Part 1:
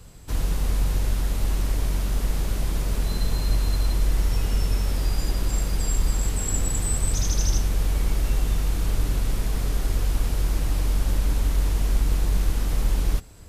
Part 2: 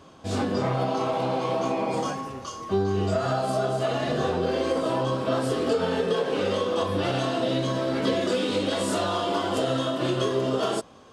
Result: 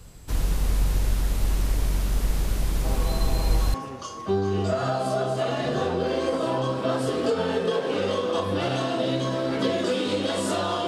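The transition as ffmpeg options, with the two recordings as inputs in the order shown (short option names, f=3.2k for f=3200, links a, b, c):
-filter_complex "[1:a]asplit=2[a][b];[0:a]apad=whole_dur=10.87,atrim=end=10.87,atrim=end=3.742[c];[b]atrim=start=2.168:end=9.3[d];[a]atrim=start=1.27:end=2.17,asetpts=PTS-STARTPTS,volume=-8.5dB,afade=t=in:d=0.004:c=hsin,afade=t=out:st=0.896:d=0.004:c=hsin,adelay=2840[e];[c][d]acrossfade=d=0.004:c1=hsin:c2=hsin[f];[f][e]amix=inputs=2:normalize=0"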